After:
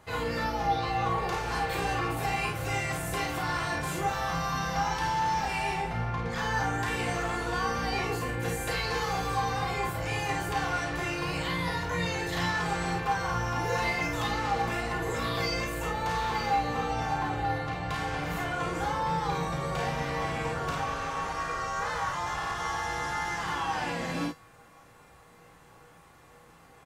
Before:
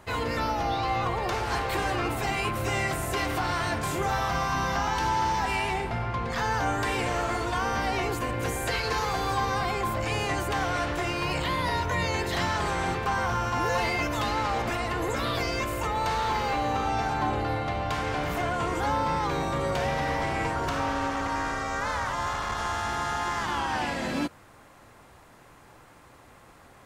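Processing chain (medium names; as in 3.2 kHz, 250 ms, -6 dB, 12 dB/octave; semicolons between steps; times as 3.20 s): feedback comb 160 Hz, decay 0.25 s, harmonics odd, mix 80%; on a send: early reflections 35 ms -4.5 dB, 52 ms -5 dB; on the sum: trim +6 dB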